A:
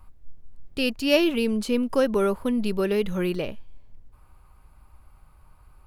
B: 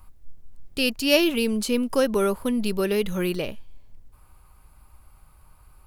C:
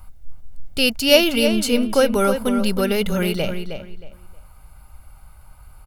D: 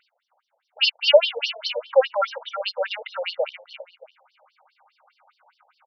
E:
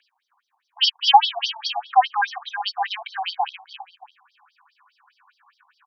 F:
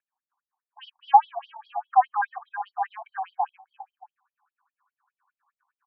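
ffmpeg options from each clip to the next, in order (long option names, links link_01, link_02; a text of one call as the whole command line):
ffmpeg -i in.wav -af "highshelf=frequency=4200:gain=9.5" out.wav
ffmpeg -i in.wav -filter_complex "[0:a]aecho=1:1:1.4:0.42,asplit=2[link_01][link_02];[link_02]adelay=314,lowpass=frequency=4200:poles=1,volume=-8dB,asplit=2[link_03][link_04];[link_04]adelay=314,lowpass=frequency=4200:poles=1,volume=0.24,asplit=2[link_05][link_06];[link_06]adelay=314,lowpass=frequency=4200:poles=1,volume=0.24[link_07];[link_01][link_03][link_05][link_07]amix=inputs=4:normalize=0,volume=5dB" out.wav
ffmpeg -i in.wav -af "afftfilt=real='re*between(b*sr/1024,610*pow(4300/610,0.5+0.5*sin(2*PI*4.9*pts/sr))/1.41,610*pow(4300/610,0.5+0.5*sin(2*PI*4.9*pts/sr))*1.41)':imag='im*between(b*sr/1024,610*pow(4300/610,0.5+0.5*sin(2*PI*4.9*pts/sr))/1.41,610*pow(4300/610,0.5+0.5*sin(2*PI*4.9*pts/sr))*1.41)':win_size=1024:overlap=0.75,volume=3dB" out.wav
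ffmpeg -i in.wav -af "afreqshift=230,volume=1dB" out.wav
ffmpeg -i in.wav -af "afftdn=noise_reduction=12:noise_floor=-37,lowpass=frequency=1500:width=0.5412,lowpass=frequency=1500:width=1.3066,volume=-2.5dB" out.wav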